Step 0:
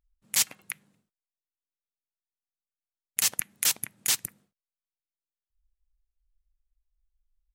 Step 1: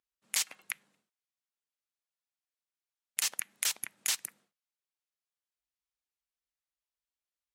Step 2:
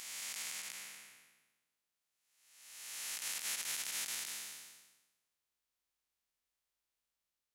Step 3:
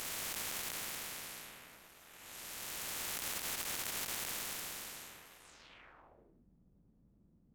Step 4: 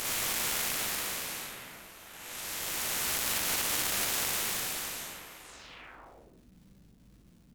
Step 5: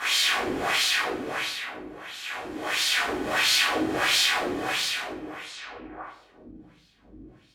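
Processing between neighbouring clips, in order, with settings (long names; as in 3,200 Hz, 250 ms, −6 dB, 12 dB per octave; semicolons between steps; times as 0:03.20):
meter weighting curve A; downward compressor 5 to 1, threshold −27 dBFS, peak gain reduction 8 dB
spectrum smeared in time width 742 ms; brickwall limiter −33 dBFS, peak gain reduction 9 dB; level +6 dB
running median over 9 samples; low-pass filter sweep 13,000 Hz → 200 Hz, 0:05.37–0:06.43; every bin compressed towards the loudest bin 4 to 1; level +9 dB
surface crackle 270 per second −63 dBFS; on a send: ambience of single reflections 41 ms −3 dB, 57 ms −4.5 dB; on the sum: level +6.5 dB
auto-filter band-pass sine 1.5 Hz 280–4,300 Hz; convolution reverb RT60 0.50 s, pre-delay 3 ms, DRR −13.5 dB; level +1.5 dB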